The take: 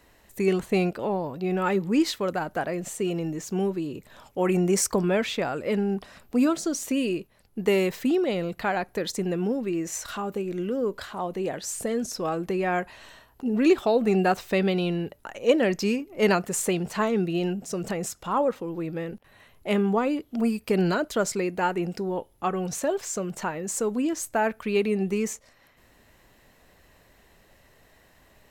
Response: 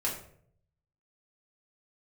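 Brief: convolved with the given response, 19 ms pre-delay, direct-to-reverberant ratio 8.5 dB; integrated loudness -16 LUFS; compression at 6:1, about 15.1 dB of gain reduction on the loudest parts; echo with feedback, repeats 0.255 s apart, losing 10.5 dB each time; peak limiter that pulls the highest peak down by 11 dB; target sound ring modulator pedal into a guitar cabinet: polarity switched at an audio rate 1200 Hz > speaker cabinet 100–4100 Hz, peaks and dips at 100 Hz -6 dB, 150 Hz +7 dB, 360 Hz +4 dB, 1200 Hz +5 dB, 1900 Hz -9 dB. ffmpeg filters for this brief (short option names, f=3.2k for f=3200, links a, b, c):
-filter_complex "[0:a]acompressor=threshold=-32dB:ratio=6,alimiter=level_in=7.5dB:limit=-24dB:level=0:latency=1,volume=-7.5dB,aecho=1:1:255|510|765:0.299|0.0896|0.0269,asplit=2[a][b];[1:a]atrim=start_sample=2205,adelay=19[c];[b][c]afir=irnorm=-1:irlink=0,volume=-14dB[d];[a][d]amix=inputs=2:normalize=0,aeval=exprs='val(0)*sgn(sin(2*PI*1200*n/s))':c=same,highpass=100,equalizer=f=100:t=q:w=4:g=-6,equalizer=f=150:t=q:w=4:g=7,equalizer=f=360:t=q:w=4:g=4,equalizer=f=1.2k:t=q:w=4:g=5,equalizer=f=1.9k:t=q:w=4:g=-9,lowpass=f=4.1k:w=0.5412,lowpass=f=4.1k:w=1.3066,volume=22.5dB"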